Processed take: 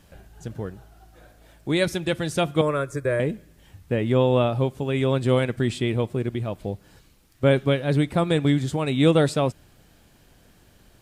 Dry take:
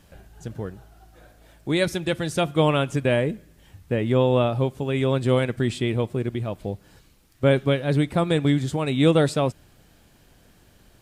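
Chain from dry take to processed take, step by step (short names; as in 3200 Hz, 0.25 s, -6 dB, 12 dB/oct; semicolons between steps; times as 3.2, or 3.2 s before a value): 2.61–3.2 fixed phaser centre 800 Hz, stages 6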